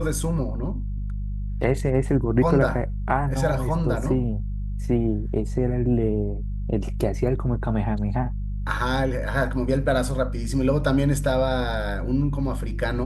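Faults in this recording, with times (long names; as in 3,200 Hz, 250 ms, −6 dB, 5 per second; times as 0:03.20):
mains hum 50 Hz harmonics 4 −28 dBFS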